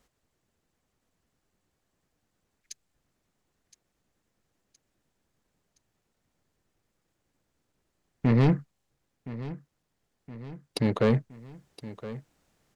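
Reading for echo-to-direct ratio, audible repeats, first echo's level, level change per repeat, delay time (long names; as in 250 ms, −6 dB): −14.0 dB, 3, −15.5 dB, −5.5 dB, 1,018 ms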